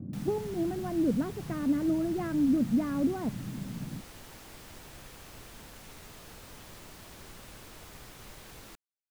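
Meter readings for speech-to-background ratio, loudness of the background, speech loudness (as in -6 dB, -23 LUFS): 18.0 dB, -48.5 LUFS, -30.5 LUFS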